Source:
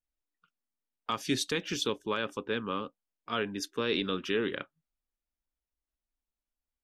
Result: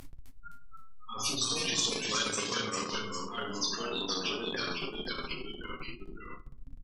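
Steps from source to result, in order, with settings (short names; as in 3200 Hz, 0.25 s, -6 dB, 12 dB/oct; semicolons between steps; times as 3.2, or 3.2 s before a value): zero-crossing step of -34 dBFS; feedback echo 90 ms, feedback 52%, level -10.5 dB; spectral gate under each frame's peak -10 dB strong; low shelf 200 Hz +11 dB; shoebox room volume 320 m³, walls furnished, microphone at 3.8 m; compressor 6:1, threshold -16 dBFS, peak gain reduction 10.5 dB; echoes that change speed 0.258 s, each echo -1 st, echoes 3, each echo -6 dB; transient shaper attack +5 dB, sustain -6 dB; pre-emphasis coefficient 0.97; downsampling 32000 Hz; spectral compressor 2:1; gain +7 dB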